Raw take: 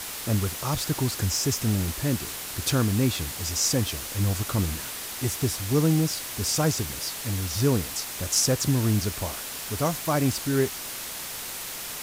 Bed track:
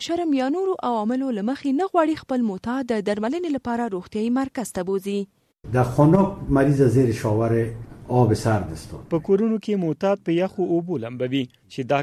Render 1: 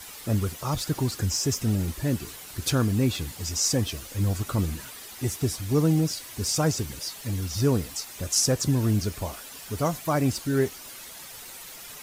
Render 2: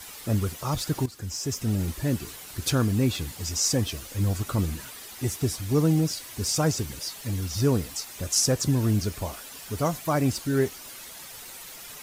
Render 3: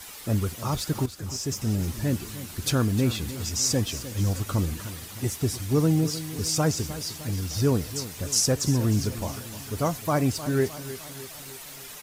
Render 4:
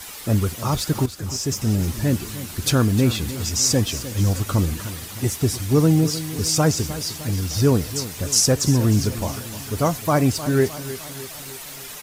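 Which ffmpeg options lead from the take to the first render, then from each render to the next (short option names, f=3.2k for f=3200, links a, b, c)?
-af "afftdn=nr=10:nf=-36"
-filter_complex "[0:a]asplit=2[a][b];[a]atrim=end=1.06,asetpts=PTS-STARTPTS,afade=t=out:st=1.056:d=0.004:c=hsin:silence=0.188365[c];[b]atrim=start=1.06,asetpts=PTS-STARTPTS,afade=t=in:d=0.78:silence=0.188365[d];[c][d]concat=n=2:v=0:a=1"
-af "aecho=1:1:306|612|918|1224|1530|1836:0.2|0.11|0.0604|0.0332|0.0183|0.01"
-af "volume=5.5dB"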